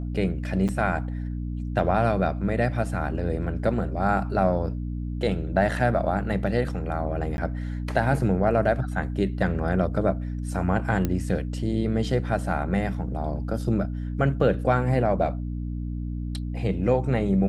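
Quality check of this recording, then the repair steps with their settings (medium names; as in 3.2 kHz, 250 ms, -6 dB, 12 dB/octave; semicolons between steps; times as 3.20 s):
hum 60 Hz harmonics 5 -30 dBFS
0.68–0.69 s: dropout 7.4 ms
7.37–7.38 s: dropout 11 ms
11.05 s: pop -12 dBFS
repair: de-click; de-hum 60 Hz, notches 5; interpolate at 0.68 s, 7.4 ms; interpolate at 7.37 s, 11 ms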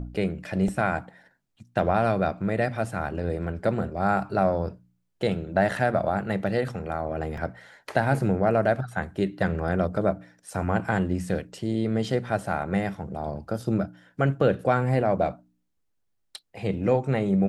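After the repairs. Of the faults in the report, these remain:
nothing left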